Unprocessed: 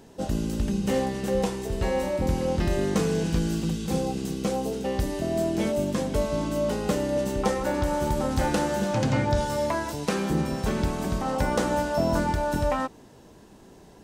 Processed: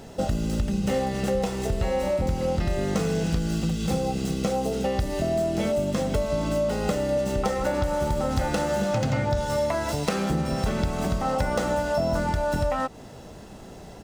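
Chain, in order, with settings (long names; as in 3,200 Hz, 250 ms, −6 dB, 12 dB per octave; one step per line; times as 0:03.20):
running median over 3 samples
comb filter 1.5 ms, depth 37%
downward compressor 4 to 1, threshold −31 dBFS, peak gain reduction 12 dB
level +8 dB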